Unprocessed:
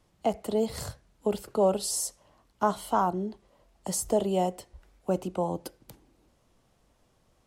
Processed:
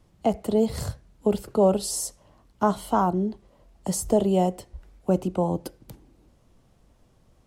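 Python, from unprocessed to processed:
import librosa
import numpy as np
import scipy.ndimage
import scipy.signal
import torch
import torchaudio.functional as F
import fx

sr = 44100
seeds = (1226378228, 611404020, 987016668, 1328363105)

y = fx.low_shelf(x, sr, hz=360.0, db=8.5)
y = F.gain(torch.from_numpy(y), 1.0).numpy()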